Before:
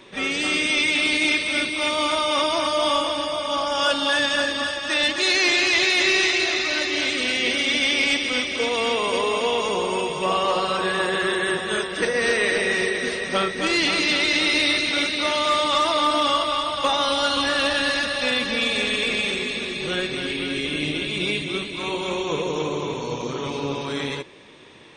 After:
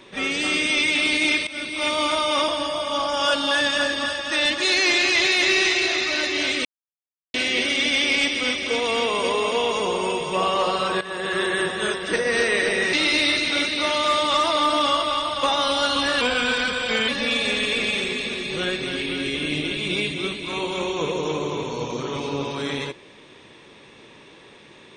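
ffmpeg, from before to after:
ffmpeg -i in.wav -filter_complex "[0:a]asplit=8[link_01][link_02][link_03][link_04][link_05][link_06][link_07][link_08];[link_01]atrim=end=1.47,asetpts=PTS-STARTPTS,afade=type=out:start_time=1.466:duration=0.004:curve=hsin:silence=0.16788[link_09];[link_02]atrim=start=1.47:end=2.482,asetpts=PTS-STARTPTS,afade=type=in:duration=0.4:silence=0.16788[link_10];[link_03]atrim=start=3.058:end=7.23,asetpts=PTS-STARTPTS,afade=type=out:start_time=4.168:duration=0.004:curve=hsin,apad=pad_dur=0.69[link_11];[link_04]atrim=start=7.23:end=10.9,asetpts=PTS-STARTPTS,afade=type=in:duration=0.004:curve=hsin,afade=type=out:start_time=3.666:duration=0.004:curve=hsin:silence=0.188365[link_12];[link_05]atrim=start=10.9:end=12.822,asetpts=PTS-STARTPTS,afade=type=in:duration=0.41:silence=0.188365[link_13];[link_06]atrim=start=14.338:end=17.624[link_14];[link_07]atrim=start=17.62:end=18.39,asetpts=PTS-STARTPTS,asetrate=38808,aresample=44100[link_15];[link_08]atrim=start=18.386[link_16];[link_09][link_10]concat=n=2:v=0:a=1[link_17];[link_11][link_12][link_13]concat=n=3:v=0:a=1[link_18];[link_17][link_18]acrossfade=duration=0.004:curve1=hsin:curve2=hsin[link_19];[link_19][link_14]acrossfade=duration=0.004:curve1=hsin:curve2=hsin[link_20];[link_20][link_15]acrossfade=duration=0.004:curve1=hsin:curve2=hsin[link_21];[link_21][link_16]acrossfade=duration=0.004:curve1=hsin:curve2=hsin" out.wav

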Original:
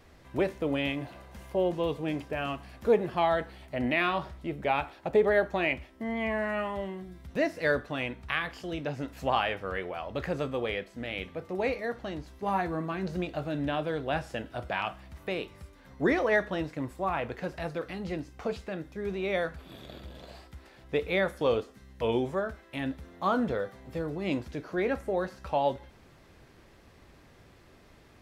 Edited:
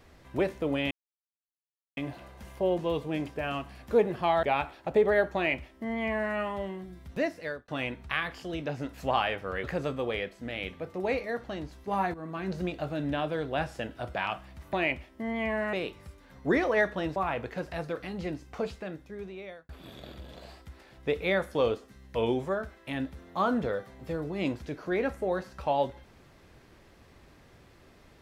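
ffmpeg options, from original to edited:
ffmpeg -i in.wav -filter_complex "[0:a]asplit=10[link_01][link_02][link_03][link_04][link_05][link_06][link_07][link_08][link_09][link_10];[link_01]atrim=end=0.91,asetpts=PTS-STARTPTS,afade=type=out:start_time=0.906:duration=0.004:curve=hsin,apad=pad_dur=1.06[link_11];[link_02]atrim=start=0.91:end=3.372,asetpts=PTS-STARTPTS,afade=type=in:duration=0.004:curve=hsin[link_12];[link_03]atrim=start=4.618:end=7.87,asetpts=PTS-STARTPTS,afade=type=out:start_time=2.712:duration=0.54[link_13];[link_04]atrim=start=7.87:end=9.832,asetpts=PTS-STARTPTS,afade=type=in:duration=0.004:curve=hsin[link_14];[link_05]atrim=start=10.188:end=12.69,asetpts=PTS-STARTPTS,afade=type=out:start_time=2.498:duration=0.004:curve=hsin:silence=0.211349[link_15];[link_06]atrim=start=12.69:end=15.282,asetpts=PTS-STARTPTS,afade=type=in:duration=0.33:silence=0.211349[link_16];[link_07]atrim=start=5.538:end=6.542[link_17];[link_08]atrim=start=15.278:end=16.712[link_18];[link_09]atrim=start=17.018:end=19.55,asetpts=PTS-STARTPTS,afade=type=out:start_time=1.502:duration=1.03[link_19];[link_10]atrim=start=19.55,asetpts=PTS-STARTPTS,afade=type=in:duration=0.004:curve=hsin[link_20];[link_11][link_12]concat=n=2:v=0:a=1[link_21];[link_13][link_14]concat=n=2:v=0:a=1[link_22];[link_21][link_22]acrossfade=duration=0.004:curve1=hsin:curve2=hsin[link_23];[link_15][link_16]concat=n=2:v=0:a=1[link_24];[link_23][link_24]acrossfade=duration=0.004:curve1=hsin:curve2=hsin[link_25];[link_25][link_17]acrossfade=duration=0.004:curve1=hsin:curve2=hsin[link_26];[link_26][link_18]acrossfade=duration=0.004:curve1=hsin:curve2=hsin[link_27];[link_19][link_20]concat=n=2:v=0:a=1[link_28];[link_27][link_28]acrossfade=duration=0.004:curve1=hsin:curve2=hsin" out.wav

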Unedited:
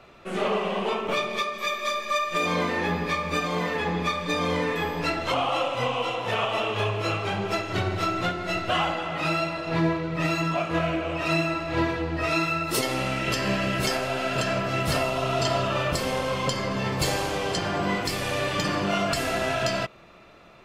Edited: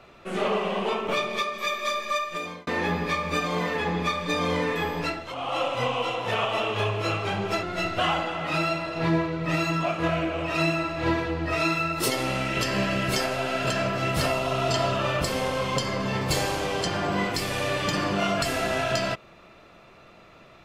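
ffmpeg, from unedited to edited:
ffmpeg -i in.wav -filter_complex "[0:a]asplit=5[link_01][link_02][link_03][link_04][link_05];[link_01]atrim=end=2.67,asetpts=PTS-STARTPTS,afade=type=out:start_time=2.06:duration=0.61[link_06];[link_02]atrim=start=2.67:end=5.27,asetpts=PTS-STARTPTS,afade=type=in:duration=0.004:curve=hsin,afade=type=out:start_time=2.31:duration=0.29:silence=0.298538[link_07];[link_03]atrim=start=5.27:end=5.35,asetpts=PTS-STARTPTS,volume=-10.5dB[link_08];[link_04]atrim=start=5.35:end=7.632,asetpts=PTS-STARTPTS,afade=type=in:duration=0.29:silence=0.298538[link_09];[link_05]atrim=start=8.338[link_10];[link_06][link_07][link_08][link_09]concat=n=4:v=0:a=1[link_11];[link_11][link_10]acrossfade=duration=0.004:curve1=hsin:curve2=hsin" out.wav

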